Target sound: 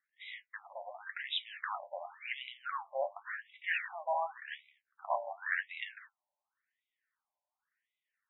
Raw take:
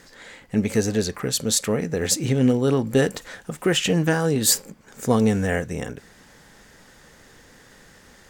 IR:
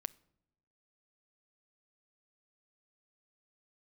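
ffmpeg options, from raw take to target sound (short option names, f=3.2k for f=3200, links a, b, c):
-filter_complex "[0:a]asettb=1/sr,asplit=3[a][b][c];[a]atrim=end=2.764[d];[b]atrim=start=2.76:end=3.64,asetpts=PTS-STARTPTS,afade=t=in:d=0.004:c=qsin,afade=t=out:st=0.876:d=0.004:c=qsin,aemphasis=mode=reproduction:type=riaa[e];[c]atrim=start=3.636[f];[d][e]acrossfade=d=0.004:c1=hsin:c2=qsin[g];[g][f]acrossfade=d=0.004:c1=qsin:c2=hsin,agate=range=-34dB:threshold=-43dB:ratio=16:detection=peak,lowshelf=f=270:t=q:w=3:g=6.5,asplit=2[h][i];[i]acompressor=threshold=-20dB:ratio=6,volume=-2dB[j];[h][j]amix=inputs=2:normalize=0,asplit=3[k][l][m];[k]afade=t=out:st=4.4:d=0.02[n];[l]aeval=exprs='val(0)*sin(2*PI*36*n/s)':c=same,afade=t=in:st=4.4:d=0.02,afade=t=out:st=5.66:d=0.02[o];[m]afade=t=in:st=5.66:d=0.02[p];[n][o][p]amix=inputs=3:normalize=0,flanger=delay=9.3:depth=1:regen=53:speed=0.85:shape=triangular,afftfilt=real='re*between(b*sr/1024,730*pow(2800/730,0.5+0.5*sin(2*PI*0.91*pts/sr))/1.41,730*pow(2800/730,0.5+0.5*sin(2*PI*0.91*pts/sr))*1.41)':imag='im*between(b*sr/1024,730*pow(2800/730,0.5+0.5*sin(2*PI*0.91*pts/sr))/1.41,730*pow(2800/730,0.5+0.5*sin(2*PI*0.91*pts/sr))*1.41)':win_size=1024:overlap=0.75,volume=1dB"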